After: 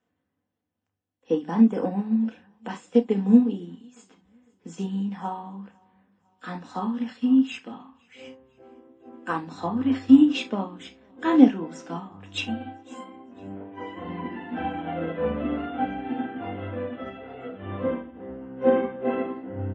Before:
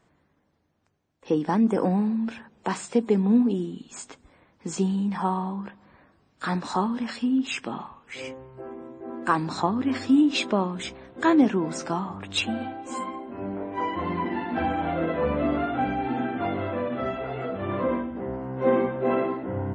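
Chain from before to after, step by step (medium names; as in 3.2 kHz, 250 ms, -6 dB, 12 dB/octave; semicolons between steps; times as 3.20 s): feedback delay 504 ms, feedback 49%, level -23 dB; reverberation, pre-delay 3 ms, DRR 3 dB; upward expansion 1.5:1, over -32 dBFS; trim -5.5 dB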